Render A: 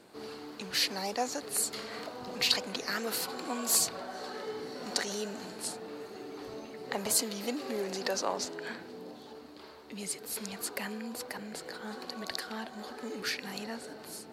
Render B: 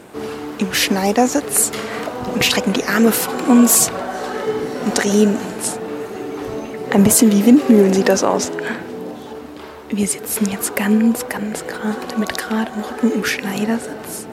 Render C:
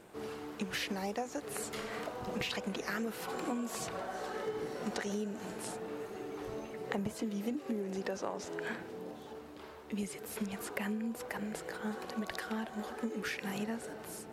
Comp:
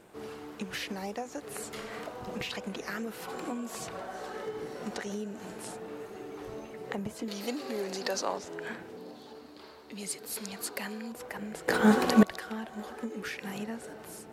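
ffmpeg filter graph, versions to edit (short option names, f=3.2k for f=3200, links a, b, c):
-filter_complex "[0:a]asplit=2[a][b];[2:a]asplit=4[c][d][e][f];[c]atrim=end=7.282[g];[a]atrim=start=7.278:end=8.392[h];[d]atrim=start=8.388:end=8.972[i];[b]atrim=start=8.968:end=11.122[j];[e]atrim=start=11.118:end=11.682[k];[1:a]atrim=start=11.678:end=12.232[l];[f]atrim=start=12.228[m];[g][h]acrossfade=d=0.004:c1=hsin:c2=hsin[n];[n][i]acrossfade=d=0.004:c1=hsin:c2=hsin[o];[o][j]acrossfade=d=0.004:c1=hsin:c2=hsin[p];[p][k]acrossfade=d=0.004:c1=hsin:c2=hsin[q];[q][l]acrossfade=d=0.004:c1=hsin:c2=hsin[r];[r][m]acrossfade=d=0.004:c1=hsin:c2=hsin"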